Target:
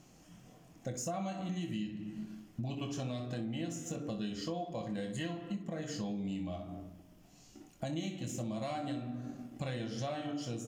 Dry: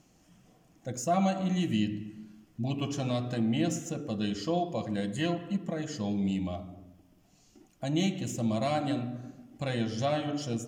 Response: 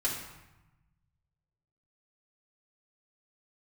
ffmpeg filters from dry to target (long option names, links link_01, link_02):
-filter_complex "[0:a]aecho=1:1:24|62:0.473|0.282,asplit=2[link_01][link_02];[link_02]aeval=exprs='sgn(val(0))*max(abs(val(0))-0.00355,0)':channel_layout=same,volume=-8.5dB[link_03];[link_01][link_03]amix=inputs=2:normalize=0,acompressor=threshold=-39dB:ratio=5,volume=2dB"